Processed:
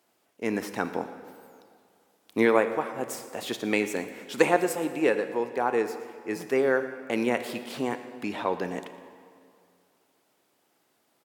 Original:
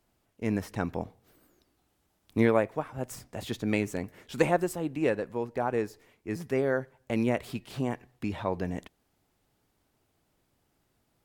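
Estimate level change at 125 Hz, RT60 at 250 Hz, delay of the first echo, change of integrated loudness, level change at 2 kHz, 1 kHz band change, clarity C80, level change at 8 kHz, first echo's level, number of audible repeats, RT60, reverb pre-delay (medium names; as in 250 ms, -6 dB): -8.5 dB, 2.1 s, 117 ms, +3.0 dB, +6.0 dB, +4.5 dB, 11.0 dB, +6.0 dB, -19.5 dB, 1, 2.3 s, 30 ms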